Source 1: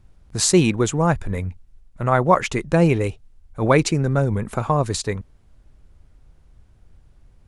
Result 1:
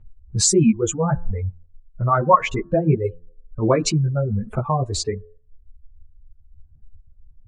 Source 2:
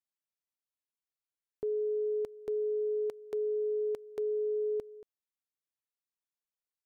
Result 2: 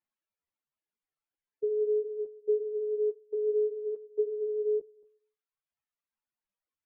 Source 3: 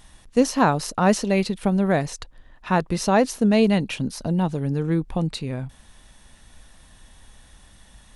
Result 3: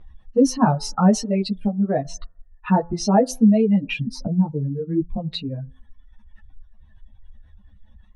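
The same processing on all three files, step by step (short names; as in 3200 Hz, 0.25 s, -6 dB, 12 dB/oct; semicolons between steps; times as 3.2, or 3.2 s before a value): spectral contrast raised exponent 1.9; de-hum 85.53 Hz, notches 22; reverb removal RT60 1.3 s; in parallel at -1 dB: compressor, threshold -32 dBFS; on the sum: low-pass opened by the level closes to 2300 Hz, open at -16 dBFS; ensemble effect; gain +4 dB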